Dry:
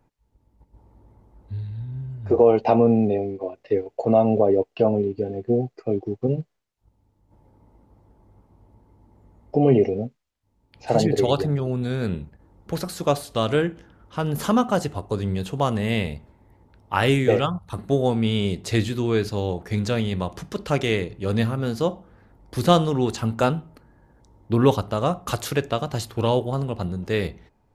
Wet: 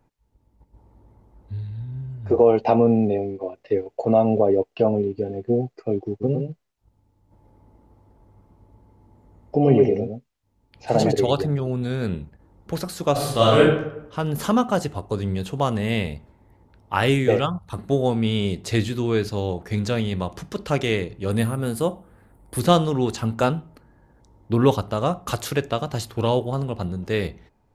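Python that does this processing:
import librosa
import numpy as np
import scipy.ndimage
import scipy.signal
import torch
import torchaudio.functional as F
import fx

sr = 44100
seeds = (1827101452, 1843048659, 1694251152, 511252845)

y = fx.echo_single(x, sr, ms=112, db=-5.5, at=(6.2, 11.11), fade=0.02)
y = fx.reverb_throw(y, sr, start_s=13.12, length_s=0.48, rt60_s=0.81, drr_db=-7.0)
y = fx.high_shelf_res(y, sr, hz=7400.0, db=8.5, q=3.0, at=(21.31, 22.6))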